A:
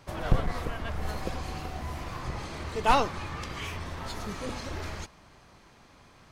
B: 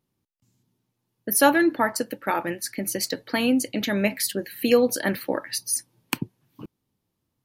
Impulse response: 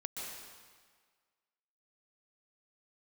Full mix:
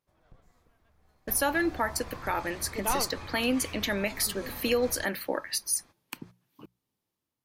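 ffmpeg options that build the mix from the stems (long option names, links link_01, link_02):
-filter_complex "[0:a]bandreject=frequency=2900:width=12,volume=-5.5dB[link_01];[1:a]lowshelf=frequency=310:gain=-10,bandreject=frequency=60:width_type=h:width=6,bandreject=frequency=120:width_type=h:width=6,bandreject=frequency=180:width_type=h:width=6,dynaudnorm=framelen=120:gausssize=9:maxgain=5dB,volume=-6dB,asplit=2[link_02][link_03];[link_03]apad=whole_len=278431[link_04];[link_01][link_04]sidechaingate=range=-28dB:threshold=-45dB:ratio=16:detection=peak[link_05];[link_05][link_02]amix=inputs=2:normalize=0,alimiter=limit=-16dB:level=0:latency=1:release=147"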